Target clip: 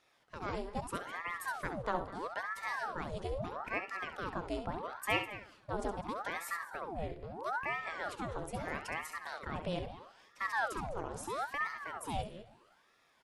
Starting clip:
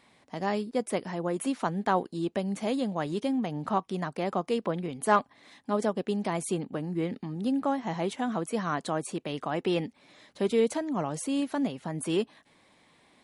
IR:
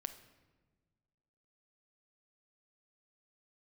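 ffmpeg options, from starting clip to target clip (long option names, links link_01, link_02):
-filter_complex "[0:a]asplit=2[link_01][link_02];[link_02]adelay=204.1,volume=-14dB,highshelf=frequency=4000:gain=-4.59[link_03];[link_01][link_03]amix=inputs=2:normalize=0,asplit=2[link_04][link_05];[1:a]atrim=start_sample=2205,adelay=67[link_06];[link_05][link_06]afir=irnorm=-1:irlink=0,volume=-6dB[link_07];[link_04][link_07]amix=inputs=2:normalize=0,aeval=exprs='val(0)*sin(2*PI*870*n/s+870*0.8/0.77*sin(2*PI*0.77*n/s))':channel_layout=same,volume=-7dB"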